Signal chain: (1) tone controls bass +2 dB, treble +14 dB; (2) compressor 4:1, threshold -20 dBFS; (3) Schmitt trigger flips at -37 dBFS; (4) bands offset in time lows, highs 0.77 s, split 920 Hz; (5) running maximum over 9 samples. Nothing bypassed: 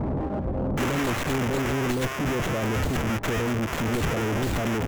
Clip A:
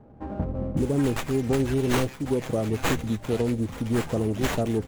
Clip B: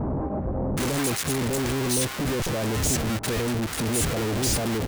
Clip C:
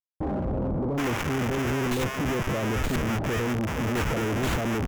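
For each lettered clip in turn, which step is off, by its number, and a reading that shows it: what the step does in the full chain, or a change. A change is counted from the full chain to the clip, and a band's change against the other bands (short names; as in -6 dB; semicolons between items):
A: 3, distortion 0 dB; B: 5, distortion -3 dB; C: 1, loudness change -1.0 LU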